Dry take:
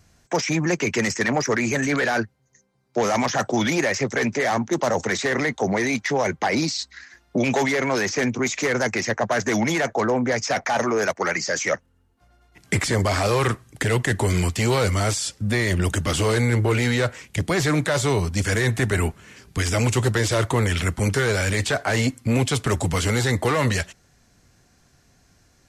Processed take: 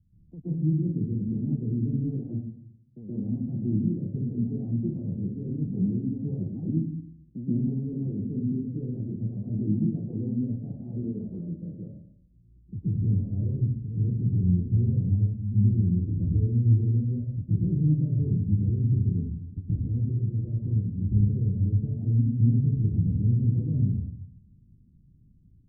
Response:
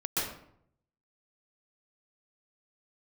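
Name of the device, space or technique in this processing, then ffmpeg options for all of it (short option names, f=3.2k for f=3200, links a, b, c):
club heard from the street: -filter_complex "[0:a]asettb=1/sr,asplit=3[a][b][c];[a]atrim=end=19.594[d];[b]atrim=start=19.59:end=20.77,asetpts=PTS-STARTPTS,afade=t=in:d=0.004:c=qsin,afade=t=out:st=1.176:d=0.004:c=qsin,equalizer=f=2.4k:w=0.46:g=11[e];[c]atrim=start=20.766[f];[d][e]acrossfade=d=0.004:c1=hsin:c2=qsin[g];[g][f]acrossfade=d=0.004:c1=qsin:c2=hsin,alimiter=limit=-14dB:level=0:latency=1:release=248,lowpass=f=220:w=0.5412,lowpass=f=220:w=1.3066[h];[1:a]atrim=start_sample=2205[i];[h][i]afir=irnorm=-1:irlink=0,volume=-5dB"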